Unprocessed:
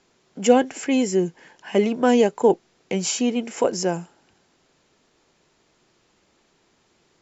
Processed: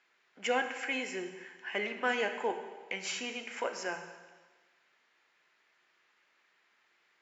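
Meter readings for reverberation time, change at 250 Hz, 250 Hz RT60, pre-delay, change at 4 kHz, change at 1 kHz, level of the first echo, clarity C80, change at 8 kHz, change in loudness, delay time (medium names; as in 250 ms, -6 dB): 1.4 s, -22.0 dB, 1.3 s, 4 ms, -7.5 dB, -10.5 dB, no echo, 9.5 dB, no reading, -13.5 dB, no echo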